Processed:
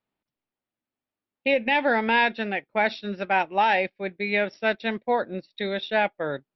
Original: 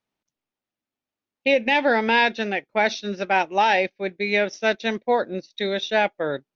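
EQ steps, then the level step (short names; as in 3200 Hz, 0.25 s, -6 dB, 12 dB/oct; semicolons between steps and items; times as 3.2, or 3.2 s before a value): brick-wall FIR low-pass 5700 Hz; air absorption 190 m; dynamic EQ 390 Hz, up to -4 dB, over -35 dBFS, Q 0.96; 0.0 dB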